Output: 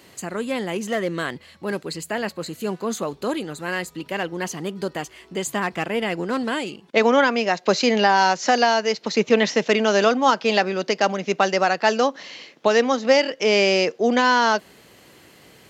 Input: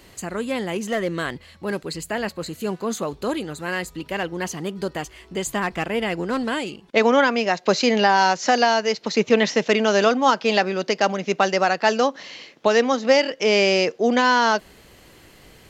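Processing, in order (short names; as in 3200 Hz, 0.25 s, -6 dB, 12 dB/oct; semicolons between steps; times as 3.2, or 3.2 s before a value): HPF 120 Hz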